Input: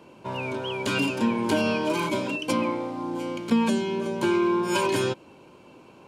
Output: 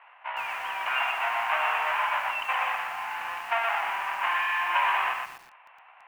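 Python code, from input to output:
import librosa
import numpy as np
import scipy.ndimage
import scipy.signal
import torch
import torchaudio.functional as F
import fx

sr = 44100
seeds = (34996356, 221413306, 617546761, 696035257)

y = fx.halfwave_hold(x, sr)
y = scipy.signal.sosfilt(scipy.signal.cheby1(4, 1.0, [720.0, 2800.0], 'bandpass', fs=sr, output='sos'), y)
y = fx.echo_crushed(y, sr, ms=121, feedback_pct=35, bits=8, wet_db=-3.5)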